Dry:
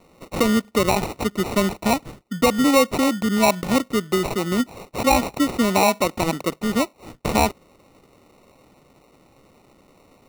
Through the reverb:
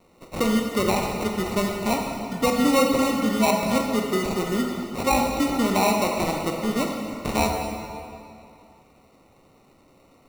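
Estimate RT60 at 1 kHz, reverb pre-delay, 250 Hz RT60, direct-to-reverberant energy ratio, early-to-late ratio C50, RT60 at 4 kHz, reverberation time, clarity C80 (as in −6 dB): 2.5 s, 13 ms, 2.5 s, 1.0 dB, 2.5 dB, 2.0 s, 2.5 s, 3.5 dB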